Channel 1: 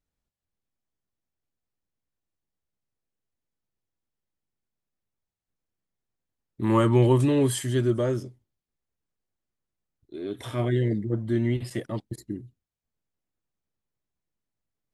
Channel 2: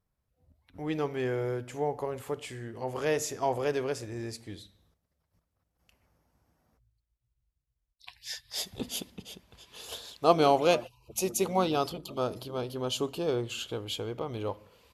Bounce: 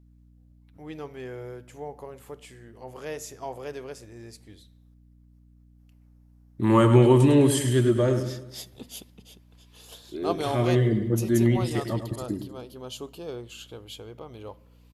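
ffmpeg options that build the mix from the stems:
-filter_complex "[0:a]volume=1.33,asplit=2[s0][s1];[s1]volume=0.355[s2];[1:a]highshelf=f=10000:g=6.5,aeval=exprs='val(0)+0.00447*(sin(2*PI*60*n/s)+sin(2*PI*2*60*n/s)/2+sin(2*PI*3*60*n/s)/3+sin(2*PI*4*60*n/s)/4+sin(2*PI*5*60*n/s)/5)':c=same,volume=0.447[s3];[s2]aecho=0:1:103|206|309|412|515|618|721:1|0.47|0.221|0.104|0.0488|0.0229|0.0108[s4];[s0][s3][s4]amix=inputs=3:normalize=0"

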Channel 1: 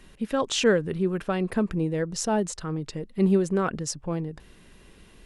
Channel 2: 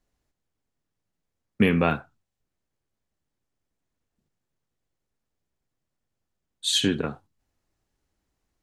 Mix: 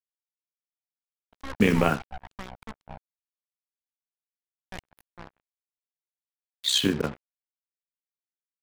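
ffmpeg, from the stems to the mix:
-filter_complex "[0:a]highpass=f=330:w=0.5412,highpass=f=330:w=1.3066,equalizer=f=9000:t=o:w=1.7:g=-11,aeval=exprs='abs(val(0))':c=same,adelay=1100,volume=0.398,asplit=3[s0][s1][s2];[s0]atrim=end=2.99,asetpts=PTS-STARTPTS,afade=t=out:st=2.986:d=0.004:c=hsin[s3];[s1]atrim=start=2.99:end=4.72,asetpts=PTS-STARTPTS,volume=0[s4];[s2]atrim=start=4.72,asetpts=PTS-STARTPTS,afade=t=in:d=0.004:c=hsin[s5];[s3][s4][s5]concat=n=3:v=0:a=1[s6];[1:a]agate=range=0.0224:threshold=0.00251:ratio=3:detection=peak,highpass=f=59:p=1,afwtdn=0.0158,volume=1.33,asplit=2[s7][s8];[s8]volume=0.112,aecho=0:1:84:1[s9];[s6][s7][s9]amix=inputs=3:normalize=0,tremolo=f=64:d=0.621,acrusher=bits=5:mix=0:aa=0.5"

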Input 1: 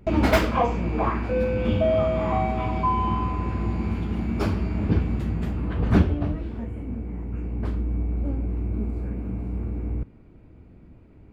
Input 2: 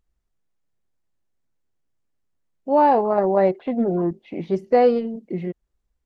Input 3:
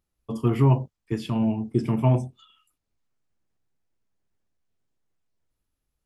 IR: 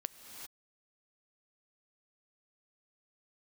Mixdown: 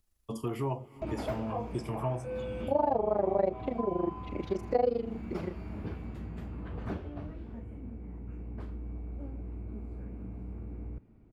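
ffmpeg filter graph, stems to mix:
-filter_complex "[0:a]highshelf=f=2900:g=-12,adelay=950,volume=0.251,asplit=2[s0][s1];[s1]volume=0.251[s2];[1:a]tremolo=f=25:d=0.974,volume=0.944[s3];[2:a]asubboost=boost=11:cutoff=82,volume=0.562,asplit=2[s4][s5];[s5]volume=0.211[s6];[3:a]atrim=start_sample=2205[s7];[s2][s6]amix=inputs=2:normalize=0[s8];[s8][s7]afir=irnorm=-1:irlink=0[s9];[s0][s3][s4][s9]amix=inputs=4:normalize=0,highshelf=f=4100:g=9.5,acrossover=split=400|830[s10][s11][s12];[s10]acompressor=threshold=0.0141:ratio=4[s13];[s11]acompressor=threshold=0.0562:ratio=4[s14];[s12]acompressor=threshold=0.00398:ratio=4[s15];[s13][s14][s15]amix=inputs=3:normalize=0"

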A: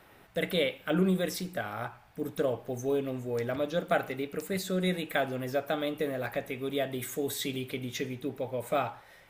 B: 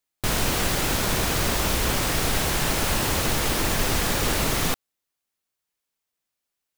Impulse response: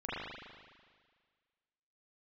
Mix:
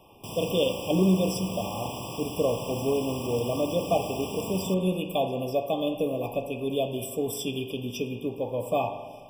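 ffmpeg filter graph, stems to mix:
-filter_complex "[0:a]volume=1.33,asplit=2[s0][s1];[s1]volume=0.282[s2];[1:a]highpass=f=86:w=0.5412,highpass=f=86:w=1.3066,volume=0.178,asplit=2[s3][s4];[s4]volume=0.631[s5];[2:a]atrim=start_sample=2205[s6];[s2][s5]amix=inputs=2:normalize=0[s7];[s7][s6]afir=irnorm=-1:irlink=0[s8];[s0][s3][s8]amix=inputs=3:normalize=0,afftfilt=real='re*eq(mod(floor(b*sr/1024/1200),2),0)':imag='im*eq(mod(floor(b*sr/1024/1200),2),0)':win_size=1024:overlap=0.75"

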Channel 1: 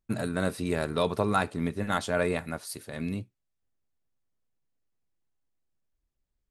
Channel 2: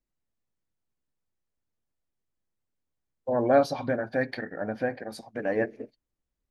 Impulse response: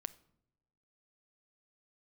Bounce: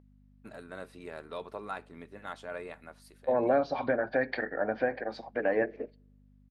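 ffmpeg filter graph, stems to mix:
-filter_complex "[0:a]adelay=350,volume=0.266[s0];[1:a]lowpass=f=5200:w=0.5412,lowpass=f=5200:w=1.3066,acrossover=split=250[s1][s2];[s2]acompressor=threshold=0.0447:ratio=6[s3];[s1][s3]amix=inputs=2:normalize=0,aeval=exprs='val(0)+0.00316*(sin(2*PI*50*n/s)+sin(2*PI*2*50*n/s)/2+sin(2*PI*3*50*n/s)/3+sin(2*PI*4*50*n/s)/4+sin(2*PI*5*50*n/s)/5)':c=same,volume=1.33,asplit=2[s4][s5];[s5]volume=0.299[s6];[2:a]atrim=start_sample=2205[s7];[s6][s7]afir=irnorm=-1:irlink=0[s8];[s0][s4][s8]amix=inputs=3:normalize=0,bass=f=250:g=-14,treble=f=4000:g=-10"

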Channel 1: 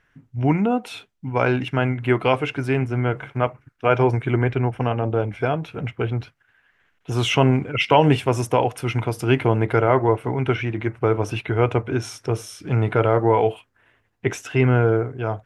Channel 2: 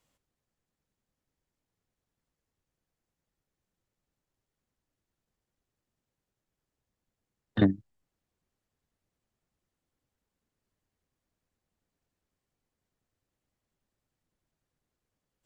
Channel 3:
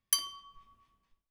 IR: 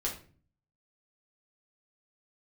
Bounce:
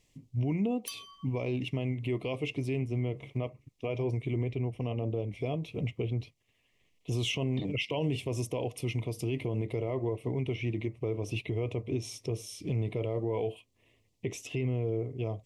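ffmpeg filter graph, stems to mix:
-filter_complex "[0:a]equalizer=f=850:t=o:w=0.52:g=-13.5,volume=0.75,asplit=2[s0][s1];[1:a]equalizer=f=5800:t=o:w=2.5:g=11.5,alimiter=limit=0.126:level=0:latency=1,volume=0.708[s2];[2:a]adelay=750,volume=0.841[s3];[s1]apad=whole_len=90535[s4];[s3][s4]sidechaincompress=threshold=0.0112:ratio=8:attack=16:release=120[s5];[s0][s2]amix=inputs=2:normalize=0,asuperstop=centerf=1500:order=4:qfactor=1.2,alimiter=limit=0.2:level=0:latency=1:release=18,volume=1[s6];[s5][s6]amix=inputs=2:normalize=0,alimiter=limit=0.075:level=0:latency=1:release=331"

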